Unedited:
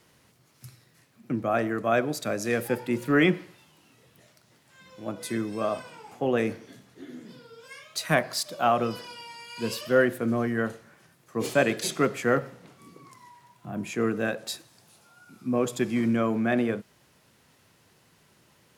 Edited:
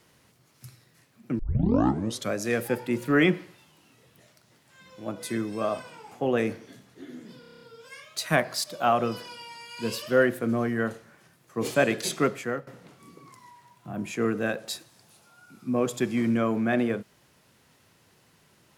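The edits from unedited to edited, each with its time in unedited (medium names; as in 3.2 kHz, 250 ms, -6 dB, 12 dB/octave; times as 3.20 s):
1.39 s: tape start 0.93 s
7.40 s: stutter 0.03 s, 8 plays
12.03–12.46 s: fade out linear, to -17.5 dB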